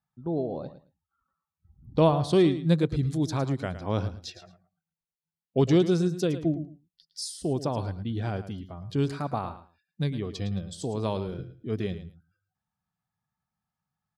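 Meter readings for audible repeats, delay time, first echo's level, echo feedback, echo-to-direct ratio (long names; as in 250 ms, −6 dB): 2, 110 ms, −12.5 dB, 18%, −12.5 dB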